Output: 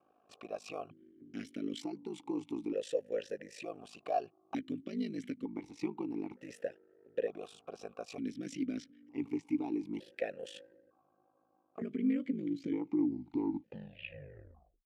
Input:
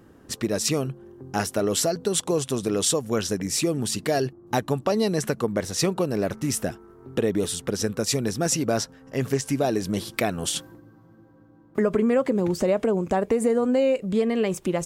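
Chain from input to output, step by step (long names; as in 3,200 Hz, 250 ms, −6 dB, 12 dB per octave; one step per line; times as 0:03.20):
turntable brake at the end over 2.61 s
ring modulation 26 Hz
formant filter that steps through the vowels 1.1 Hz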